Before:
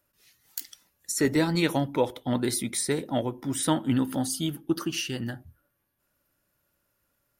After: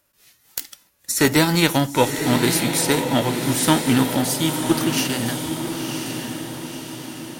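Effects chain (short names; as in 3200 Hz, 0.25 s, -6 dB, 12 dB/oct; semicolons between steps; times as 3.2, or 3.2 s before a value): spectral whitening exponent 0.6; added harmonics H 4 -29 dB, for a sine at -8 dBFS; diffused feedback echo 1.014 s, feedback 53%, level -6 dB; gain +7 dB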